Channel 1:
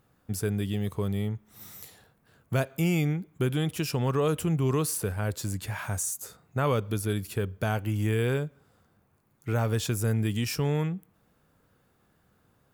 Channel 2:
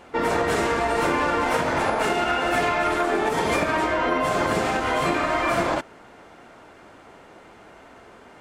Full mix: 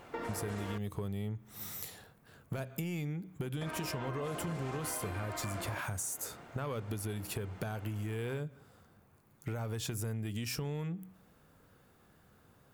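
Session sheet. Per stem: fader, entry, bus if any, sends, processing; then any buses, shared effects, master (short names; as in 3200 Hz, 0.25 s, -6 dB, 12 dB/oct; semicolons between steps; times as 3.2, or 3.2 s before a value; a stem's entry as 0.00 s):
+3.0 dB, 0.00 s, no send, soft clip -17.5 dBFS, distortion -23 dB; compressor, threshold -34 dBFS, peak gain reduction 10 dB; de-hum 62.08 Hz, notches 5
-6.5 dB, 0.00 s, muted 0.78–3.61, no send, compressor, threshold -30 dBFS, peak gain reduction 11.5 dB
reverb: off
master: compressor, threshold -34 dBFS, peak gain reduction 6 dB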